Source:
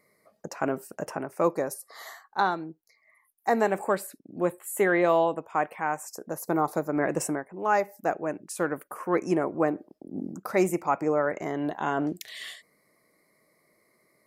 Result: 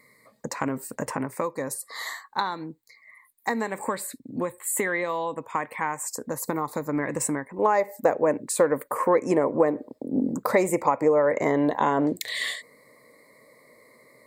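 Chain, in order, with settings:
EQ curve with evenly spaced ripples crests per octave 1, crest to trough 9 dB
downward compressor 10 to 1, threshold −28 dBFS, peak gain reduction 13 dB
parametric band 560 Hz −6.5 dB 1.3 octaves, from 0:07.59 +5 dB
level +8 dB

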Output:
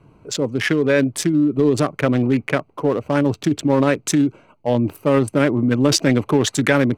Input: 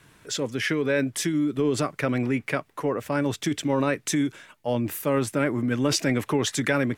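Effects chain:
adaptive Wiener filter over 25 samples
level +8 dB

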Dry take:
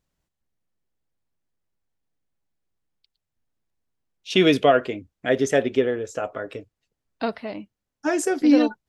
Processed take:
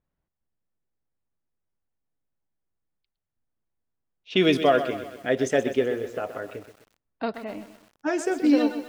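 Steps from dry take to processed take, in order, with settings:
low-pass that shuts in the quiet parts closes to 1,900 Hz, open at −15 dBFS
feedback echo at a low word length 127 ms, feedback 55%, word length 7 bits, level −11 dB
level −3 dB

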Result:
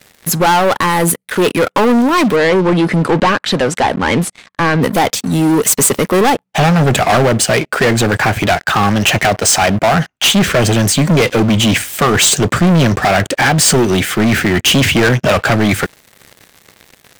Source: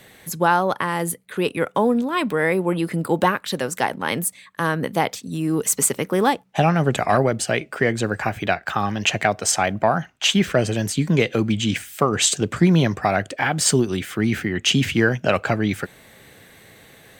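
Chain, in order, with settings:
leveller curve on the samples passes 5
0:02.36–0:04.82: high-frequency loss of the air 76 metres
level −2.5 dB

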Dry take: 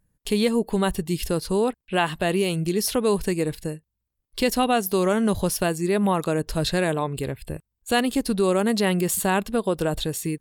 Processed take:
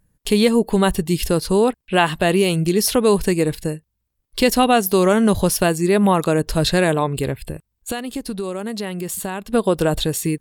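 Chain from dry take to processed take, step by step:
0:07.42–0:09.53: downward compressor 6 to 1, threshold −30 dBFS, peak gain reduction 14 dB
level +6 dB

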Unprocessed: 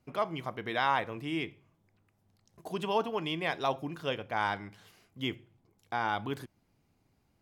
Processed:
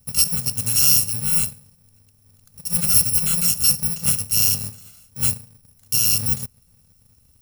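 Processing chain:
samples in bit-reversed order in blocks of 128 samples
bass and treble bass +10 dB, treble +8 dB
in parallel at −7 dB: gain into a clipping stage and back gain 24 dB
on the sum: level +4 dB

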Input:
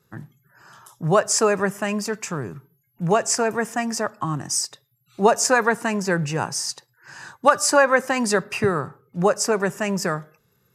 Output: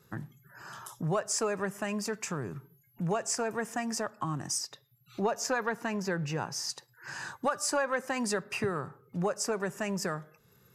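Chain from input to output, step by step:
0:04.58–0:06.70: parametric band 8,700 Hz −11 dB 0.51 octaves
downward compressor 2 to 1, threshold −41 dBFS, peak gain reduction 17 dB
soft clipping −18.5 dBFS, distortion −26 dB
level +2.5 dB

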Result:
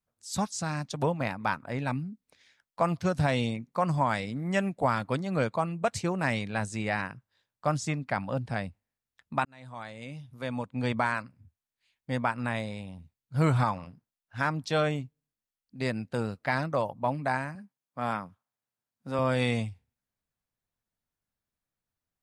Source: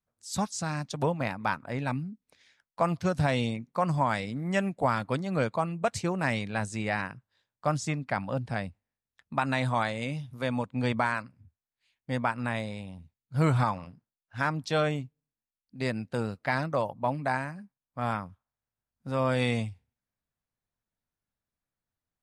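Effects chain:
0:09.45–0:11.09: fade in
0:17.55–0:19.19: high-pass filter 150 Hz 12 dB per octave

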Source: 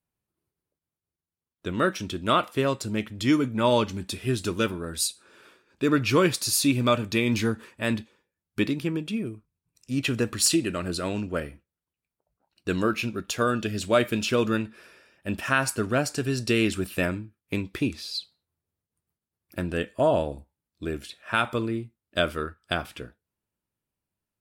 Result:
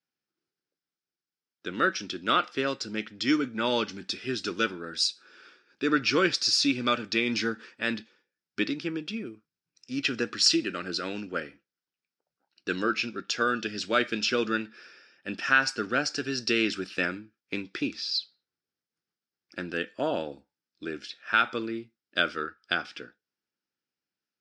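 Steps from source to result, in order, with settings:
loudspeaker in its box 290–5,800 Hz, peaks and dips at 410 Hz −3 dB, 630 Hz −9 dB, 1,000 Hz −9 dB, 1,500 Hz +5 dB, 5,200 Hz +9 dB

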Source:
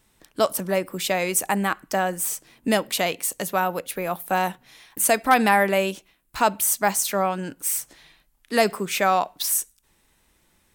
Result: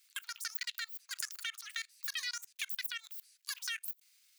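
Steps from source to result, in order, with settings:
output level in coarse steps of 23 dB
brickwall limiter −18 dBFS, peak gain reduction 8.5 dB
downward compressor 6 to 1, threshold −36 dBFS, peak gain reduction 12.5 dB
Bessel high-pass filter 1,100 Hz, order 6
change of speed 2.45×
level +6.5 dB

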